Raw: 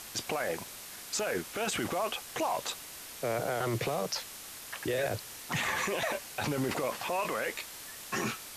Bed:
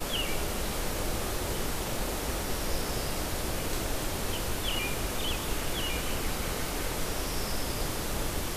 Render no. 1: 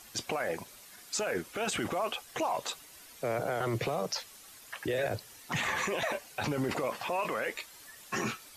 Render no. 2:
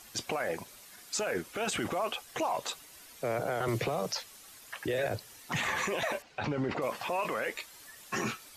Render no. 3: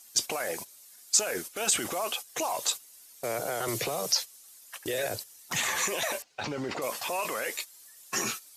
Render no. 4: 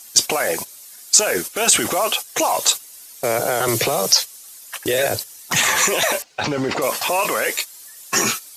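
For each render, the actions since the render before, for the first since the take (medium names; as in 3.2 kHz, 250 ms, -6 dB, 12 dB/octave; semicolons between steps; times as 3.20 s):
noise reduction 10 dB, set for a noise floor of -46 dBFS
3.68–4.13 s: three bands compressed up and down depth 70%; 6.22–6.82 s: distance through air 160 m
gate -40 dBFS, range -12 dB; tone controls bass -6 dB, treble +14 dB
trim +12 dB; peak limiter -1 dBFS, peak gain reduction 2.5 dB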